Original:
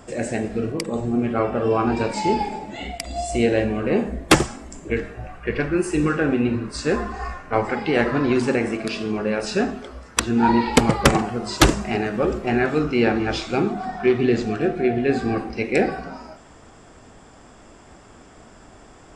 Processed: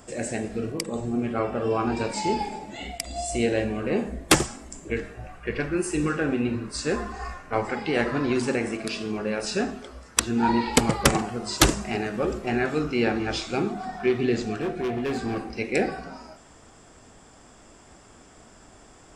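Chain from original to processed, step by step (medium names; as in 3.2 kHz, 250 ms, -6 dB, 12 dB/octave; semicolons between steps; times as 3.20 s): treble shelf 5.1 kHz +9 dB; 14.62–15.52 s: hard clipper -18.5 dBFS, distortion -22 dB; trim -5 dB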